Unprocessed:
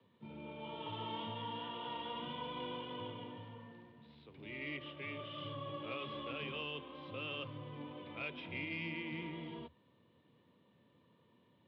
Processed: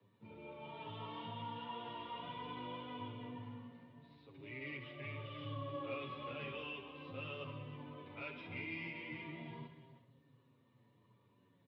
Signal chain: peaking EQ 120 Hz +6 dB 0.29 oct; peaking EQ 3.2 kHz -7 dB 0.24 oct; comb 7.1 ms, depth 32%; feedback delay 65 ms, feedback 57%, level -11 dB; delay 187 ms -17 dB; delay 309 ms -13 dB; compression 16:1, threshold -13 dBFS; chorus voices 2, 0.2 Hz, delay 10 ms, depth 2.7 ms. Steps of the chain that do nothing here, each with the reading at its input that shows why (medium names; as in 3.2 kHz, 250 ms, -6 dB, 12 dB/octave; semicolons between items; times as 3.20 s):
compression, threshold -13 dBFS: peak at its input -28.5 dBFS